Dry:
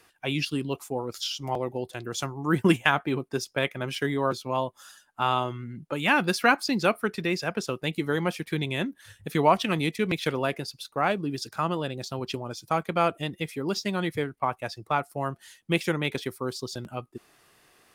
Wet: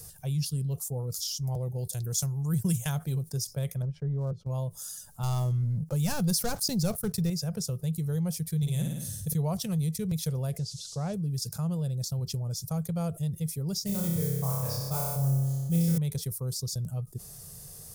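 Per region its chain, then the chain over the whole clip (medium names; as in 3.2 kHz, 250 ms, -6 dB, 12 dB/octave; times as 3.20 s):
1.78–3.32 s: treble shelf 2.1 kHz +8.5 dB + band-stop 1.2 kHz, Q 16
3.82–4.47 s: block-companded coder 7-bit + low-pass 1 kHz + transient shaper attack -3 dB, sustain -12 dB
5.23–7.30 s: overload inside the chain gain 9 dB + waveshaping leveller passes 2
8.57–9.33 s: treble shelf 2.4 kHz +7.5 dB + flutter echo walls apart 9.3 m, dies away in 0.64 s
10.57–11.13 s: band noise 3.4–11 kHz -43 dBFS + distance through air 160 m
13.86–15.98 s: modulation noise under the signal 17 dB + flutter echo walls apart 5.1 m, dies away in 1.2 s + tape noise reduction on one side only decoder only
whole clip: FFT filter 160 Hz 0 dB, 300 Hz -29 dB, 470 Hz -15 dB, 990 Hz -26 dB, 1.9 kHz -30 dB, 2.7 kHz -30 dB, 5.5 kHz -8 dB, 12 kHz -1 dB; level flattener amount 50%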